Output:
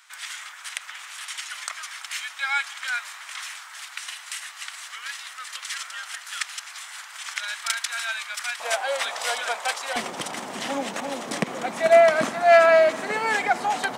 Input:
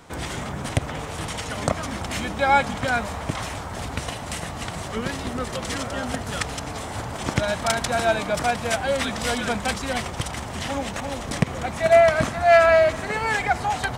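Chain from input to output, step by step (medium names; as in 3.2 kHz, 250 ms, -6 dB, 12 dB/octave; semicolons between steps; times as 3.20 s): high-pass 1.4 kHz 24 dB/octave, from 8.60 s 590 Hz, from 9.96 s 210 Hz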